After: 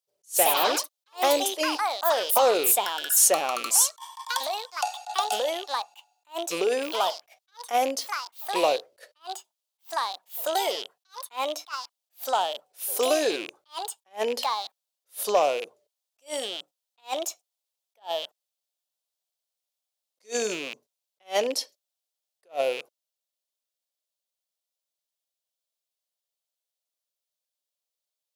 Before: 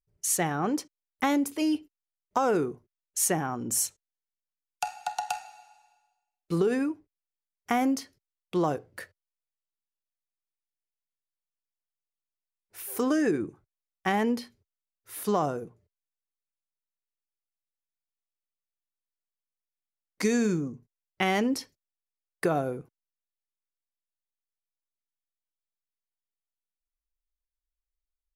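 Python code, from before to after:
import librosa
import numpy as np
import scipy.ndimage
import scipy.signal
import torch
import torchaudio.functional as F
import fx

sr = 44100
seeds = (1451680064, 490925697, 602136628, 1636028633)

y = fx.rattle_buzz(x, sr, strikes_db=-39.0, level_db=-27.0)
y = fx.highpass_res(y, sr, hz=570.0, q=3.8)
y = fx.echo_pitch(y, sr, ms=150, semitones=4, count=3, db_per_echo=-3.0)
y = fx.high_shelf_res(y, sr, hz=2600.0, db=8.0, q=1.5)
y = 10.0 ** (-8.5 / 20.0) * np.tanh(y / 10.0 ** (-8.5 / 20.0))
y = fx.attack_slew(y, sr, db_per_s=330.0)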